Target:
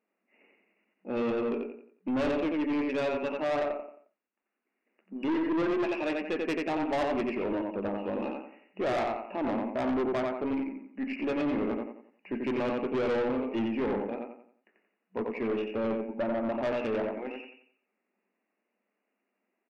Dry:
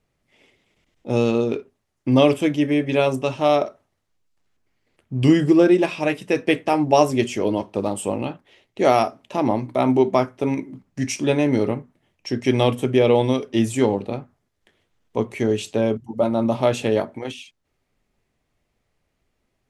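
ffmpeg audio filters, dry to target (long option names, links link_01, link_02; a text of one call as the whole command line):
ffmpeg -i in.wav -af "aecho=1:1:89|178|267|356|445:0.631|0.227|0.0818|0.0294|0.0106,afftfilt=real='re*between(b*sr/4096,190,2900)':imag='im*between(b*sr/4096,190,2900)':win_size=4096:overlap=0.75,aeval=exprs='(tanh(8.91*val(0)+0.15)-tanh(0.15))/8.91':channel_layout=same,volume=-6.5dB" out.wav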